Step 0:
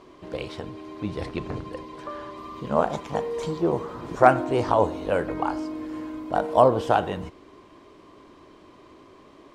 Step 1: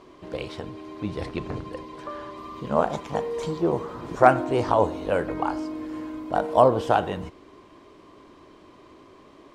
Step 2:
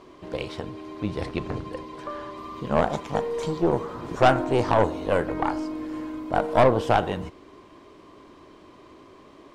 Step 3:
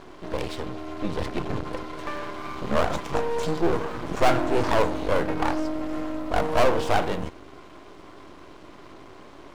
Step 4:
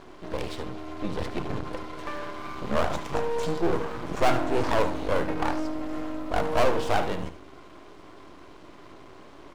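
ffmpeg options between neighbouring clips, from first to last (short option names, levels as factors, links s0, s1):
-af anull
-af "aeval=exprs='(tanh(5.01*val(0)+0.55)-tanh(0.55))/5.01':c=same,volume=1.5"
-af "aeval=exprs='max(val(0),0)':c=same,volume=2.37"
-af "aecho=1:1:73:0.237,volume=0.75"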